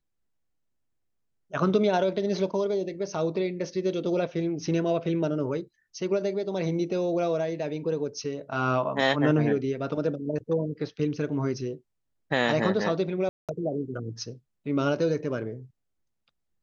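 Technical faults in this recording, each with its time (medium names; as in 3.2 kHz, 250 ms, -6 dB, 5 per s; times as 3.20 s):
13.29–13.49 s: dropout 197 ms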